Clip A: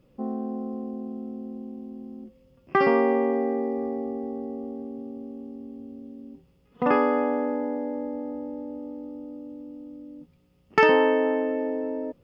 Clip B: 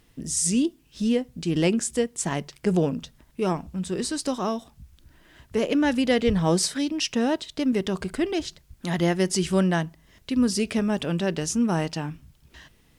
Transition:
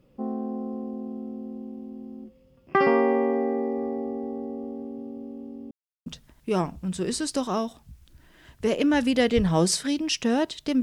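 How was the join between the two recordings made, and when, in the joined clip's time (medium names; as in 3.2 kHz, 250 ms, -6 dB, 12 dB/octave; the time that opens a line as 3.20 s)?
clip A
5.71–6.06 s: mute
6.06 s: go over to clip B from 2.97 s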